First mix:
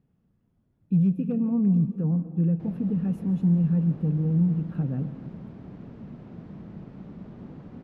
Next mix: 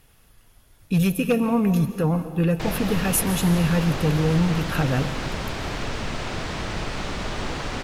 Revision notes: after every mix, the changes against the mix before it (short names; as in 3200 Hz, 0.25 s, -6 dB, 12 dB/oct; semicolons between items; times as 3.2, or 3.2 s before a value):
background +3.5 dB; master: remove band-pass 190 Hz, Q 2.2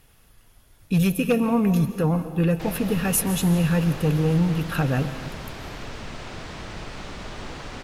background -7.0 dB